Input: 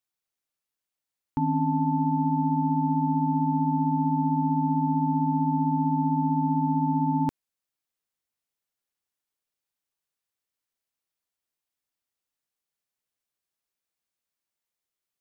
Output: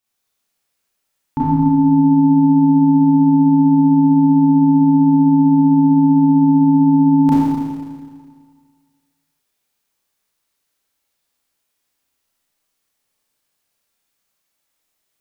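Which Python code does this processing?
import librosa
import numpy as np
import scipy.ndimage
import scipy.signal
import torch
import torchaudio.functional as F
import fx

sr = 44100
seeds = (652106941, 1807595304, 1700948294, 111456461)

y = fx.rev_schroeder(x, sr, rt60_s=1.8, comb_ms=28, drr_db=-9.0)
y = y * librosa.db_to_amplitude(5.5)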